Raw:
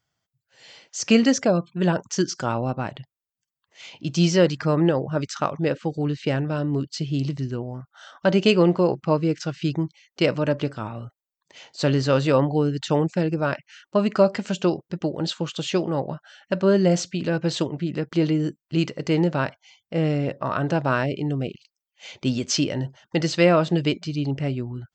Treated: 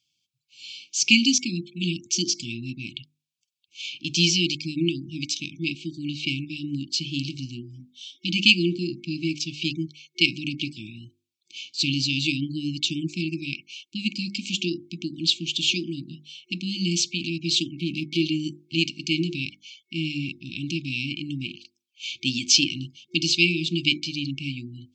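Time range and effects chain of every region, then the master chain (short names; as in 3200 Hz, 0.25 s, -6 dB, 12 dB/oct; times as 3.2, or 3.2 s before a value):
17.78–18.22 air absorption 59 m + sample leveller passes 1
whole clip: weighting filter D; FFT band-reject 360–2200 Hz; notches 50/100/150/200/250/300/350 Hz; gain -2 dB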